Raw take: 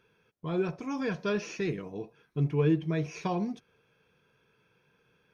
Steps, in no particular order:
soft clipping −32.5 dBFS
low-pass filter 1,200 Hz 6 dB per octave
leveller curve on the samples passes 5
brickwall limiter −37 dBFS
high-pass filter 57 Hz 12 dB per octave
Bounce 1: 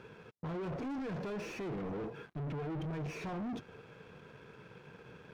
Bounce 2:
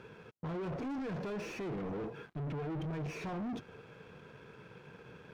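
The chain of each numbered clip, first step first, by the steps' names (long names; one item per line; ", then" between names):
brickwall limiter, then high-pass filter, then leveller curve on the samples, then soft clipping, then low-pass filter
brickwall limiter, then soft clipping, then high-pass filter, then leveller curve on the samples, then low-pass filter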